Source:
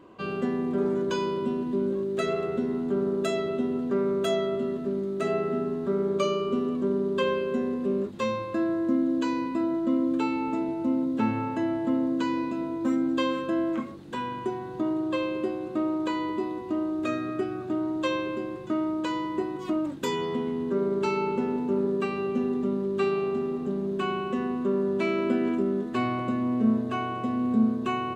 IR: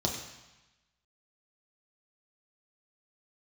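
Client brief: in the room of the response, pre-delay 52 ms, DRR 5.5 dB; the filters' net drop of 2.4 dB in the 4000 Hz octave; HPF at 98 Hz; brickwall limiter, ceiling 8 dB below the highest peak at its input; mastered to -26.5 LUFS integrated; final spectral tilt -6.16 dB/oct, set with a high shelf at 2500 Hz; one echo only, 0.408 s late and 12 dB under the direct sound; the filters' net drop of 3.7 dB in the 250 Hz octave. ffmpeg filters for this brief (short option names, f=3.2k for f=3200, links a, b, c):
-filter_complex "[0:a]highpass=98,equalizer=f=250:t=o:g=-4.5,highshelf=f=2.5k:g=4,equalizer=f=4k:t=o:g=-7,alimiter=limit=-22dB:level=0:latency=1,aecho=1:1:408:0.251,asplit=2[a][b];[1:a]atrim=start_sample=2205,adelay=52[c];[b][c]afir=irnorm=-1:irlink=0,volume=-12.5dB[d];[a][d]amix=inputs=2:normalize=0,volume=2dB"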